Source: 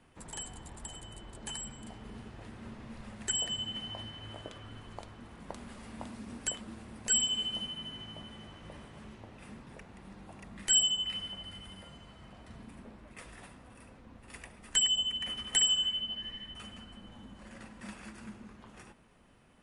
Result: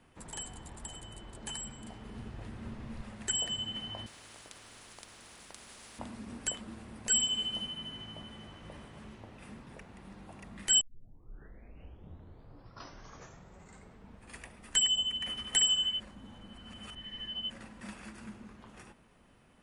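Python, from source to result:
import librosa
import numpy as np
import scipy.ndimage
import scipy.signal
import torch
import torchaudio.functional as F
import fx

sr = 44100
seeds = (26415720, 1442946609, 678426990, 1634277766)

y = fx.low_shelf(x, sr, hz=160.0, db=7.0, at=(2.17, 3.02))
y = fx.spectral_comp(y, sr, ratio=4.0, at=(4.06, 5.99))
y = fx.edit(y, sr, fx.tape_start(start_s=10.81, length_s=3.67),
    fx.reverse_span(start_s=16.0, length_s=1.5), tone=tone)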